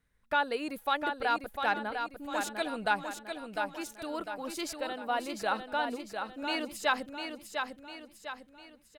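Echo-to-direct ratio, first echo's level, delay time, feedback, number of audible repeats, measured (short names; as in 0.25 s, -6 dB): -5.0 dB, -6.0 dB, 0.701 s, 45%, 5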